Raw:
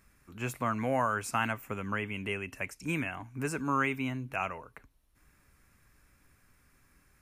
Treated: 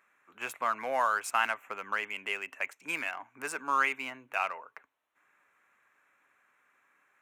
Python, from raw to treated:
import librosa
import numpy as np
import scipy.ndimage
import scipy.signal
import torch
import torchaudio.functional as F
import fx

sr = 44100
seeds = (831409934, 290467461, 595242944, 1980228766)

y = fx.wiener(x, sr, points=9)
y = scipy.signal.sosfilt(scipy.signal.butter(2, 730.0, 'highpass', fs=sr, output='sos'), y)
y = y * 10.0 ** (4.0 / 20.0)